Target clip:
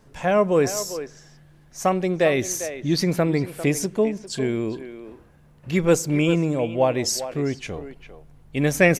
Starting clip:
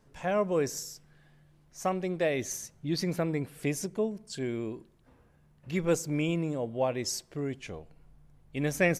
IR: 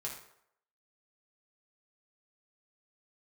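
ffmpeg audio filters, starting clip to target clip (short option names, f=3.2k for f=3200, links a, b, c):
-filter_complex "[0:a]asplit=2[a][b];[b]adelay=400,highpass=300,lowpass=3.4k,asoftclip=type=hard:threshold=-20.5dB,volume=-11dB[c];[a][c]amix=inputs=2:normalize=0,volume=9dB"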